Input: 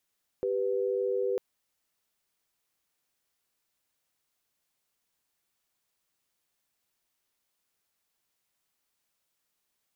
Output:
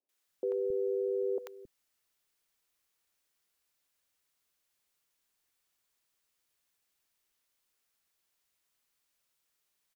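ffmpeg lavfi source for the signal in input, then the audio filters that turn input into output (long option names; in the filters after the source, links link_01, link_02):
-f lavfi -i "aevalsrc='0.0355*(sin(2*PI*392*t)+sin(2*PI*493.88*t))':duration=0.95:sample_rate=44100"
-filter_complex "[0:a]equalizer=frequency=130:width_type=o:width=1.4:gain=-3.5,acrossover=split=240|750[link_01][link_02][link_03];[link_03]adelay=90[link_04];[link_01]adelay=270[link_05];[link_05][link_02][link_04]amix=inputs=3:normalize=0"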